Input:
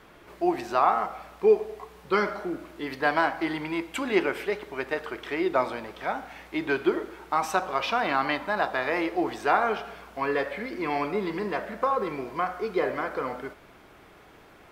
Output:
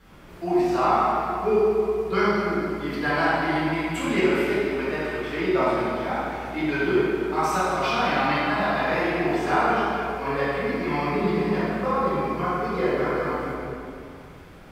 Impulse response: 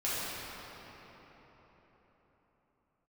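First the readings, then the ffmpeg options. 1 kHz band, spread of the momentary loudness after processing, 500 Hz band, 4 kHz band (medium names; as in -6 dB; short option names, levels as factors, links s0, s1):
+3.0 dB, 7 LU, +3.5 dB, +3.5 dB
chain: -filter_complex "[0:a]bass=f=250:g=10,treble=f=4000:g=4[s0];[1:a]atrim=start_sample=2205,asetrate=88200,aresample=44100[s1];[s0][s1]afir=irnorm=-1:irlink=0"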